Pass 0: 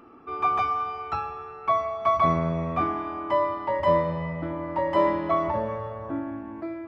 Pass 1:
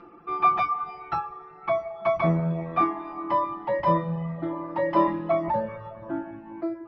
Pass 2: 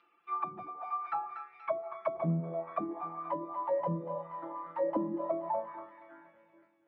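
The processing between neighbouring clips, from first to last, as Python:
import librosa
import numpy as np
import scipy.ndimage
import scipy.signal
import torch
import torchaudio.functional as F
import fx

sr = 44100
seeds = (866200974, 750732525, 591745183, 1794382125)

y1 = scipy.signal.sosfilt(scipy.signal.butter(4, 4900.0, 'lowpass', fs=sr, output='sos'), x)
y1 = fx.dereverb_blind(y1, sr, rt60_s=0.91)
y1 = y1 + 0.93 * np.pad(y1, (int(5.8 * sr / 1000.0), 0))[:len(y1)]
y2 = fx.fade_out_tail(y1, sr, length_s=1.91)
y2 = fx.echo_split(y2, sr, split_hz=470.0, low_ms=788, high_ms=238, feedback_pct=52, wet_db=-8.5)
y2 = fx.auto_wah(y2, sr, base_hz=210.0, top_hz=3400.0, q=2.1, full_db=-18.0, direction='down')
y2 = F.gain(torch.from_numpy(y2), -3.5).numpy()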